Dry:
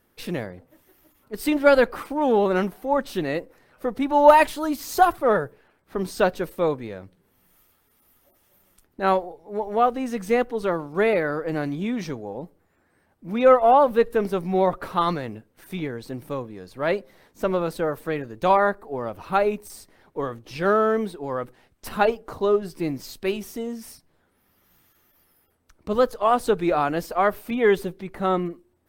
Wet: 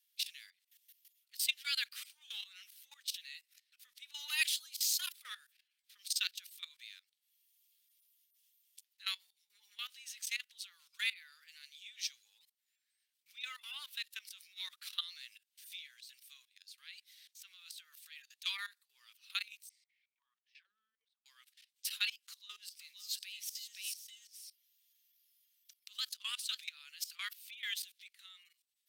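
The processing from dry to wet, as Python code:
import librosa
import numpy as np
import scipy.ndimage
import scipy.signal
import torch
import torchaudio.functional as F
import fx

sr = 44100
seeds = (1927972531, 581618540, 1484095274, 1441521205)

y = fx.auto_wah(x, sr, base_hz=200.0, top_hz=2400.0, q=12.0, full_db=-15.0, direction='down', at=(19.69, 21.26))
y = fx.echo_single(y, sr, ms=520, db=-5.0, at=(22.67, 26.63), fade=0.02)
y = fx.level_steps(y, sr, step_db=19)
y = scipy.signal.sosfilt(scipy.signal.cheby2(4, 70, 720.0, 'highpass', fs=sr, output='sos'), y)
y = fx.high_shelf(y, sr, hz=5800.0, db=-7.5)
y = y * librosa.db_to_amplitude(10.5)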